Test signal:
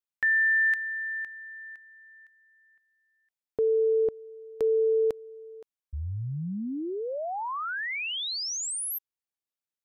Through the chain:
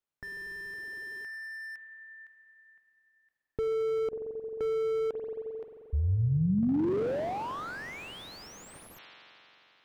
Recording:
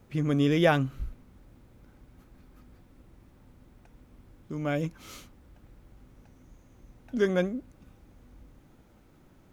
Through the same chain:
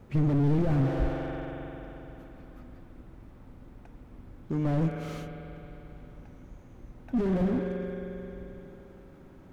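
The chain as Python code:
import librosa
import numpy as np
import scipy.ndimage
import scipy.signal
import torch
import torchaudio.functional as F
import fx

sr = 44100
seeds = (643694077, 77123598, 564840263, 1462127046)

y = fx.high_shelf(x, sr, hz=3000.0, db=-10.5)
y = fx.rev_spring(y, sr, rt60_s=3.6, pass_ms=(44,), chirp_ms=40, drr_db=9.5)
y = fx.slew_limit(y, sr, full_power_hz=8.6)
y = y * 10.0 ** (6.0 / 20.0)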